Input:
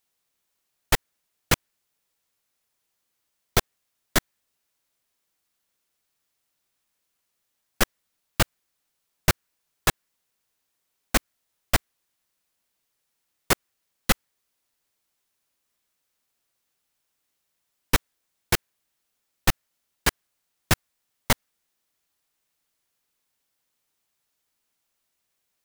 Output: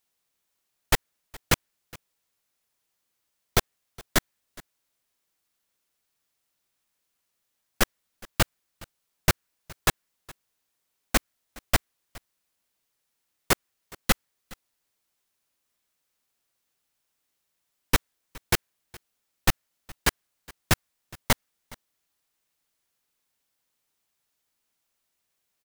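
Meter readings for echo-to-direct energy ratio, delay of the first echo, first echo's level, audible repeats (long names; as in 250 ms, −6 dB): −23.0 dB, 416 ms, −23.0 dB, 1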